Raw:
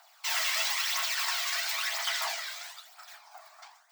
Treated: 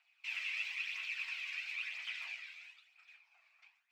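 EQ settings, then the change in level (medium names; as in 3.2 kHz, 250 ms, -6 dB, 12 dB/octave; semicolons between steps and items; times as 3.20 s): band-pass filter 2.5 kHz, Q 12; +2.5 dB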